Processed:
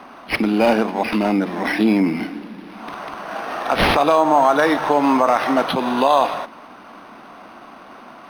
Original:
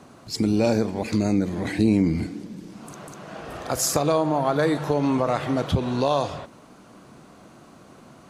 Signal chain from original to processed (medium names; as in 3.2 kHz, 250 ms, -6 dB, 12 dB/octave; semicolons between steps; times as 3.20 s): Chebyshev high-pass 230 Hz, order 3; resonant low shelf 610 Hz -6.5 dB, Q 1.5; band-stop 4.2 kHz, Q 14; loudness maximiser +15 dB; decimation joined by straight lines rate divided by 6×; trim -2.5 dB